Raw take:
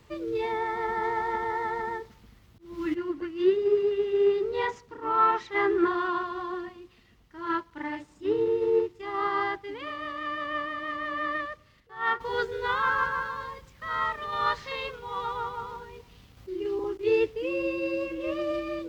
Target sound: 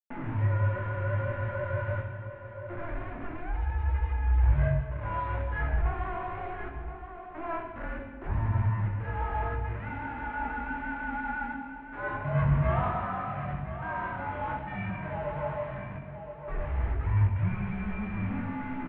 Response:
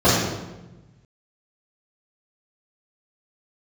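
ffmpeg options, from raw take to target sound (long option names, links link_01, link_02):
-filter_complex "[0:a]aeval=exprs='val(0)+0.5*0.0126*sgn(val(0))':channel_layout=same,asettb=1/sr,asplit=3[link_01][link_02][link_03];[link_01]atrim=end=9.494[link_04];[link_02]atrim=start=9.49:end=10.31,asetpts=PTS-STARTPTS,afade=type=in:duration=0.004:curve=qsin,afade=type=out:start_time=0.816:duration=0.004:curve=qsin,equalizer=frequency=230:width=0.33:gain=-4[link_05];[link_03]atrim=start=10.306[link_06];[link_04][link_05]acrossfade=duration=0.004:curve1=hsin:curve2=qsin[link_07];[link_07][link_06]acrossfade=duration=0.004:curve1=qsin:curve2=hsin,aeval=exprs='(tanh(39.8*val(0)+0.25)-tanh(0.25))/39.8':channel_layout=same,asettb=1/sr,asplit=3[link_08][link_09][link_10];[link_08]atrim=end=12.344[link_11];[link_09]atrim=start=12.34:end=12.88,asetpts=PTS-STARTPTS,afade=type=in:duration=0.004:curve=qsin,afade=type=out:start_time=0.536:duration=0.004:curve=qsin,acontrast=30[link_12];[link_10]atrim=start=12.876[link_13];[link_11][link_12]acrossfade=duration=0.004:curve1=hsin:curve2=qsin[link_14];[link_14][link_13]acrossfade=duration=0.004:curve1=qsin:curve2=hsin,acrusher=bits=5:mix=0:aa=0.000001,highpass=frequency=340:width_type=q:width=0.5412,highpass=frequency=340:width_type=q:width=1.307,lowpass=frequency=2400:width_type=q:width=0.5176,lowpass=frequency=2400:width_type=q:width=0.7071,lowpass=frequency=2400:width_type=q:width=1.932,afreqshift=-340,asplit=2[link_15][link_16];[link_16]adelay=22,volume=-7dB[link_17];[link_15][link_17]amix=inputs=2:normalize=0,aecho=1:1:1025:0.266,asplit=2[link_18][link_19];[1:a]atrim=start_sample=2205,afade=type=out:start_time=0.24:duration=0.01,atrim=end_sample=11025,asetrate=24255,aresample=44100[link_20];[link_19][link_20]afir=irnorm=-1:irlink=0,volume=-29dB[link_21];[link_18][link_21]amix=inputs=2:normalize=0,adynamicequalizer=threshold=0.01:dfrequency=490:dqfactor=0.71:tfrequency=490:tqfactor=0.71:attack=5:release=100:ratio=0.375:range=2.5:mode=cutabove:tftype=bell,volume=-1.5dB"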